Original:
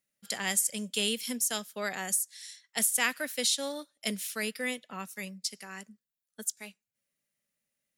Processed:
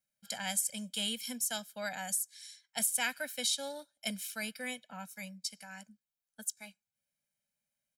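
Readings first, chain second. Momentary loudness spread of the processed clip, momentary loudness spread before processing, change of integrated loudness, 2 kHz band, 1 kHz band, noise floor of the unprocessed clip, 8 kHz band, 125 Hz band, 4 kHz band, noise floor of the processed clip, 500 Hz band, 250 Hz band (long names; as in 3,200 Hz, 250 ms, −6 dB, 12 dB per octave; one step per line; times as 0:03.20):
14 LU, 14 LU, −4.5 dB, −5.0 dB, −3.5 dB, below −85 dBFS, −4.5 dB, can't be measured, −3.5 dB, below −85 dBFS, −6.5 dB, −5.5 dB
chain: comb filter 1.3 ms, depth 93%
level −7 dB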